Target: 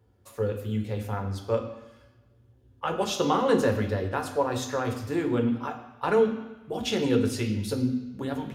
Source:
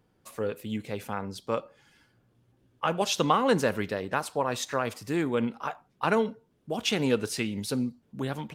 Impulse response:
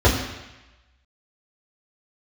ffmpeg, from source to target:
-filter_complex "[0:a]asplit=2[s0][s1];[s1]aemphasis=mode=production:type=50kf[s2];[1:a]atrim=start_sample=2205[s3];[s2][s3]afir=irnorm=-1:irlink=0,volume=0.0841[s4];[s0][s4]amix=inputs=2:normalize=0,volume=0.562"

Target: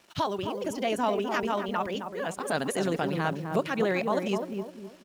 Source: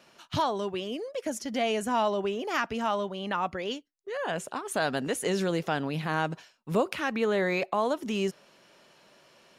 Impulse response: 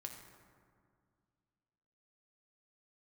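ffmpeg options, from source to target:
-filter_complex "[0:a]asplit=2[s0][s1];[s1]adelay=488,lowpass=f=830:p=1,volume=0.668,asplit=2[s2][s3];[s3]adelay=488,lowpass=f=830:p=1,volume=0.4,asplit=2[s4][s5];[s5]adelay=488,lowpass=f=830:p=1,volume=0.4,asplit=2[s6][s7];[s7]adelay=488,lowpass=f=830:p=1,volume=0.4,asplit=2[s8][s9];[s9]adelay=488,lowpass=f=830:p=1,volume=0.4[s10];[s0][s2][s4][s6][s8][s10]amix=inputs=6:normalize=0,acrusher=bits=8:mix=0:aa=0.5,atempo=1.9"

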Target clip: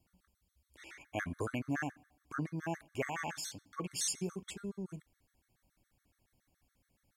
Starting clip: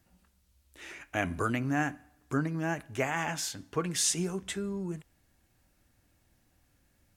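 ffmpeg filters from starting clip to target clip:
-af "afftfilt=real='re*gt(sin(2*PI*7.1*pts/sr)*(1-2*mod(floor(b*sr/1024/1100),2)),0)':imag='im*gt(sin(2*PI*7.1*pts/sr)*(1-2*mod(floor(b*sr/1024/1100),2)),0)':win_size=1024:overlap=0.75,volume=0.631"

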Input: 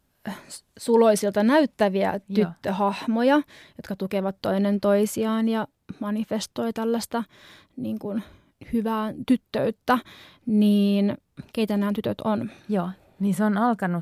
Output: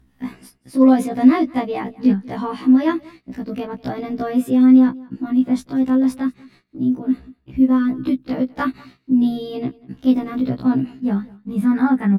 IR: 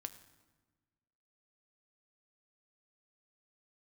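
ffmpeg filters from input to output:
-af "agate=range=0.0562:threshold=0.00447:ratio=16:detection=peak,acompressor=mode=upward:threshold=0.0112:ratio=2.5,bass=f=250:g=8,treble=f=4000:g=-12,asetrate=50715,aresample=44100,equalizer=f=250:t=o:w=0.67:g=6,equalizer=f=630:t=o:w=0.67:g=-5,equalizer=f=10000:t=o:w=0.67:g=8,aecho=1:1:191:0.0708,afftfilt=real='re*1.73*eq(mod(b,3),0)':imag='im*1.73*eq(mod(b,3),0)':win_size=2048:overlap=0.75,volume=1.12"

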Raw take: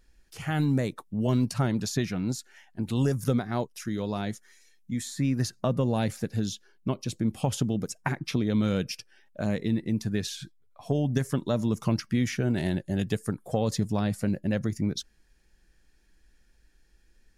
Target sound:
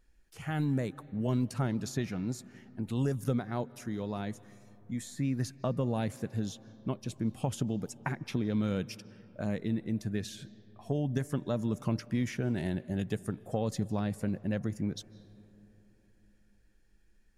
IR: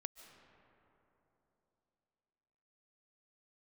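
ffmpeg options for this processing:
-filter_complex "[0:a]asplit=2[s0][s1];[s1]lowpass=f=7600:w=0.5412,lowpass=f=7600:w=1.3066[s2];[1:a]atrim=start_sample=2205,asetrate=40131,aresample=44100,lowpass=6000[s3];[s2][s3]afir=irnorm=-1:irlink=0,volume=0.501[s4];[s0][s4]amix=inputs=2:normalize=0,volume=0.422"

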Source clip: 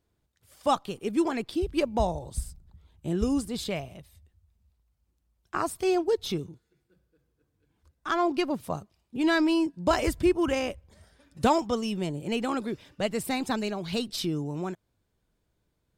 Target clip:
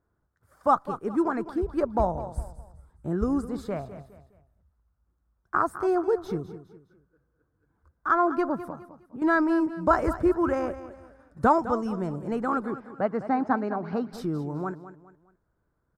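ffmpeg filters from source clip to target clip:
-filter_complex "[0:a]highshelf=f=2000:t=q:w=3:g=-12.5,asettb=1/sr,asplit=3[s0][s1][s2];[s0]atrim=end=8.594[s3];[s1]atrim=start=8.59:end=9.22,asetpts=PTS-STARTPTS,afade=t=in:d=0.004:c=qsin,afade=t=out:st=0.626:d=0.004:c=qsin,acompressor=threshold=0.0126:ratio=5[s4];[s2]atrim=start=9.216[s5];[s3][s4]acrossfade=d=0.004:c1=hsin:c2=qsin[s6];[s6][s5]acrossfade=d=0.004:c1=qsin:c2=hsin,asettb=1/sr,asplit=3[s7][s8][s9];[s7]atrim=end=12.734[s10];[s8]atrim=start=12.73:end=14.13,asetpts=PTS-STARTPTS,afade=t=in:d=0.004:c=qsin,afade=t=out:st=1.396:d=0.004:c=qsin,highpass=120,equalizer=f=270:t=q:w=4:g=4,equalizer=f=780:t=q:w=4:g=6,equalizer=f=3700:t=q:w=4:g=-10,lowpass=f=4800:w=0.5412,lowpass=f=4800:w=1.3066[s11];[s9]atrim=start=14.126[s12];[s10][s11]acrossfade=d=0.004:c1=hsin:c2=qsin[s13];[s13][s12]acrossfade=d=0.004:c1=qsin:c2=hsin,aecho=1:1:206|412|618:0.211|0.074|0.0259"

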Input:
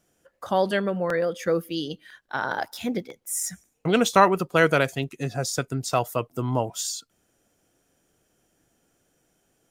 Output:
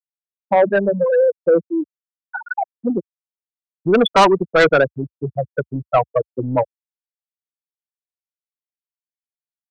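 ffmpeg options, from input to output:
-filter_complex "[0:a]afftfilt=real='re*gte(hypot(re,im),0.282)':imag='im*gte(hypot(re,im),0.282)':win_size=1024:overlap=0.75,highpass=f=70:w=0.5412,highpass=f=70:w=1.3066,acrossover=split=270[s0][s1];[s0]asoftclip=type=tanh:threshold=0.0376[s2];[s1]acontrast=71[s3];[s2][s3]amix=inputs=2:normalize=0,aeval=exprs='0.794*(cos(1*acos(clip(val(0)/0.794,-1,1)))-cos(1*PI/2))+0.178*(cos(5*acos(clip(val(0)/0.794,-1,1)))-cos(5*PI/2))':c=same,volume=0.891"

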